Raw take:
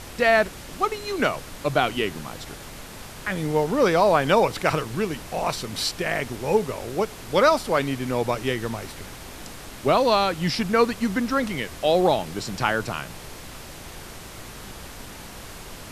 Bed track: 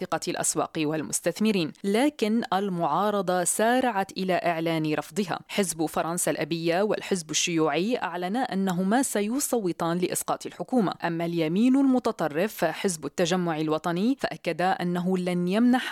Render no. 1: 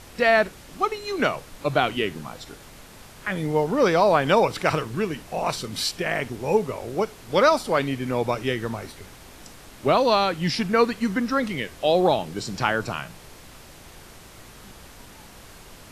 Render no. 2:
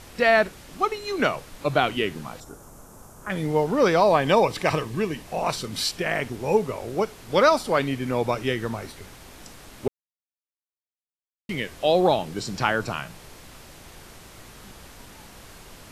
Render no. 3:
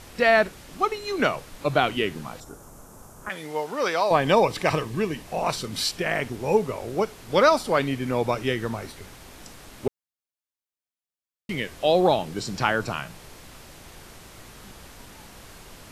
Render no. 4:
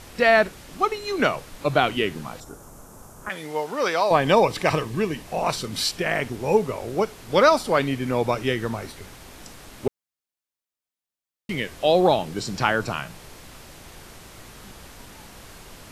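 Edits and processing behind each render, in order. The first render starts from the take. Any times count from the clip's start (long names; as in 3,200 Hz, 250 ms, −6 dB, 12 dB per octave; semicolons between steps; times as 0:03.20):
noise reduction from a noise print 6 dB
0:02.40–0:03.30: flat-topped bell 2,900 Hz −15.5 dB; 0:04.03–0:05.25: Butterworth band-reject 1,400 Hz, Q 6.2; 0:09.88–0:11.49: silence
0:03.29–0:04.11: high-pass filter 970 Hz 6 dB per octave
level +1.5 dB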